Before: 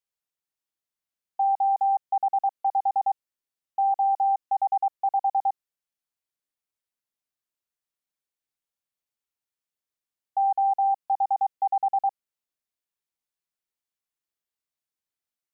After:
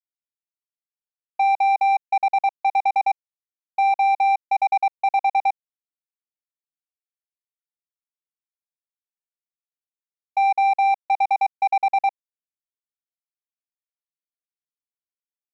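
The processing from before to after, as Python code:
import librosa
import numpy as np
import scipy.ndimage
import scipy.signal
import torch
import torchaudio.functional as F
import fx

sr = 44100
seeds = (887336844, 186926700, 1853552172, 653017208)

y = fx.power_curve(x, sr, exponent=2.0)
y = y * 10.0 ** (5.5 / 20.0)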